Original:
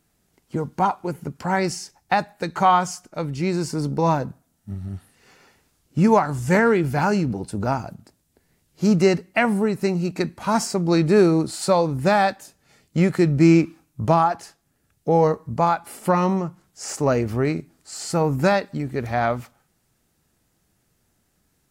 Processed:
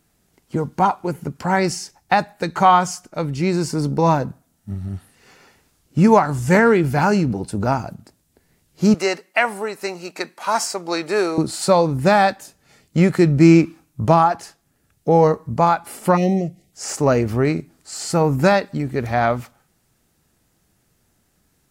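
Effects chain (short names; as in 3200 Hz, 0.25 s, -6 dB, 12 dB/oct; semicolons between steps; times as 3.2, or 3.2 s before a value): 8.94–11.38 HPF 580 Hz 12 dB/oct; 16.17–16.72 spectral gain 780–1800 Hz -30 dB; gain +3.5 dB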